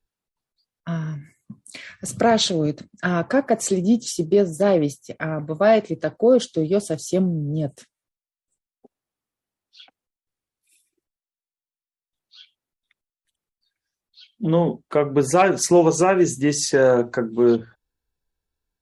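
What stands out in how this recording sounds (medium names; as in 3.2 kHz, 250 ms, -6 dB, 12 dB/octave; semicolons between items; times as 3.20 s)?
noise floor -96 dBFS; spectral tilt -5.0 dB/octave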